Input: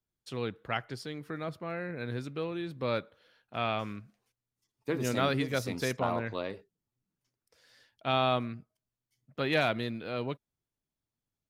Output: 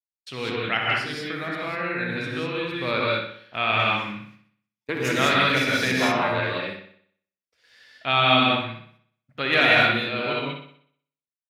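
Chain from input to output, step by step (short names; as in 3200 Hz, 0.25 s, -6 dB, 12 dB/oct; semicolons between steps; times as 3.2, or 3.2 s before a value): expander -59 dBFS; bell 2400 Hz +11 dB 2 oct; 3.99–4.89 negative-ratio compressor -47 dBFS, ratio -0.5; analogue delay 62 ms, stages 2048, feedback 48%, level -6.5 dB; non-linear reverb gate 0.22 s rising, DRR -3 dB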